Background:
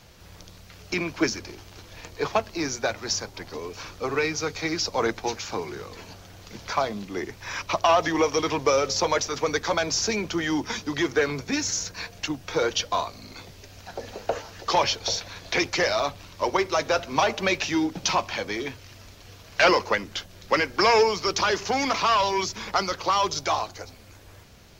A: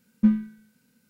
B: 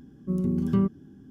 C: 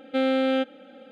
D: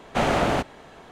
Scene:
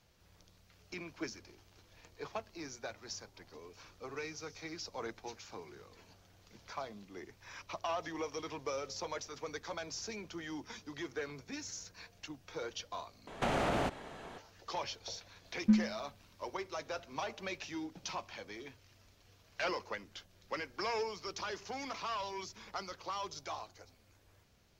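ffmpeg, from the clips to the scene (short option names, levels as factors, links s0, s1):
-filter_complex "[4:a]asplit=2[s0][s1];[0:a]volume=0.133[s2];[s0]asuperpass=centerf=5600:order=4:qfactor=5.6[s3];[s1]acompressor=threshold=0.0447:ratio=6:attack=4.3:release=81:knee=1:detection=rms[s4];[s2]asplit=2[s5][s6];[s5]atrim=end=13.274[s7];[s4]atrim=end=1.11,asetpts=PTS-STARTPTS,volume=0.794[s8];[s6]atrim=start=14.376[s9];[s3]atrim=end=1.11,asetpts=PTS-STARTPTS,volume=0.266,afade=t=in:d=0.004:c=hsin,afade=t=out:st=1.106:d=0.004:c=hsin,adelay=176841S[s10];[1:a]atrim=end=1.09,asetpts=PTS-STARTPTS,volume=0.422,afade=t=in:d=0.004:c=hsin,afade=t=out:st=1.086:d=0.004:c=hsin,adelay=15450[s11];[s7][s8]acrossfade=d=0.004:c1=hsin:c2=hsin[s12];[s12][s9]acrossfade=d=0.004:c1=hsin:c2=hsin[s13];[s13][s10][s11]amix=inputs=3:normalize=0"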